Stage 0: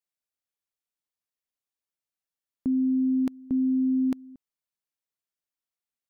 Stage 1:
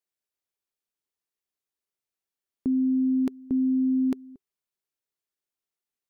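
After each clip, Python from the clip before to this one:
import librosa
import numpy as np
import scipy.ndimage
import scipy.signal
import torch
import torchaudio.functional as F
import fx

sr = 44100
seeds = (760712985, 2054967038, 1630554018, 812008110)

y = fx.peak_eq(x, sr, hz=390.0, db=8.5, octaves=0.28)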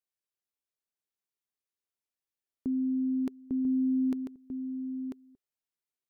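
y = x + 10.0 ** (-6.5 / 20.0) * np.pad(x, (int(993 * sr / 1000.0), 0))[:len(x)]
y = y * 10.0 ** (-6.0 / 20.0)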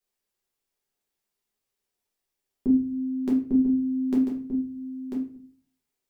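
y = fx.room_shoebox(x, sr, seeds[0], volume_m3=37.0, walls='mixed', distance_m=1.1)
y = y * 10.0 ** (3.0 / 20.0)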